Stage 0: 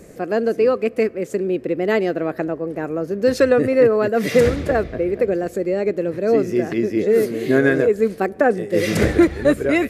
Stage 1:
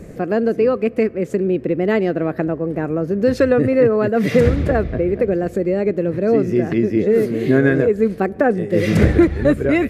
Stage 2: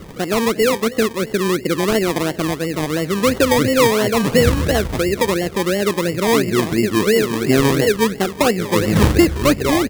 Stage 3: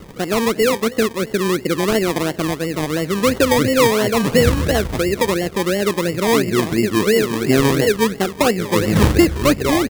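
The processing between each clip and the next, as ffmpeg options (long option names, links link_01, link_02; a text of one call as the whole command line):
ffmpeg -i in.wav -filter_complex "[0:a]asplit=2[link_01][link_02];[link_02]acompressor=threshold=-23dB:ratio=6,volume=0dB[link_03];[link_01][link_03]amix=inputs=2:normalize=0,bass=frequency=250:gain=8,treble=frequency=4000:gain=-7,volume=-3dB" out.wav
ffmpeg -i in.wav -af "aecho=1:1:242|484|726:0.112|0.046|0.0189,acrusher=samples=25:mix=1:aa=0.000001:lfo=1:lforange=15:lforate=2.9" out.wav
ffmpeg -i in.wav -af "aeval=exprs='sgn(val(0))*max(abs(val(0))-0.00501,0)':channel_layout=same" out.wav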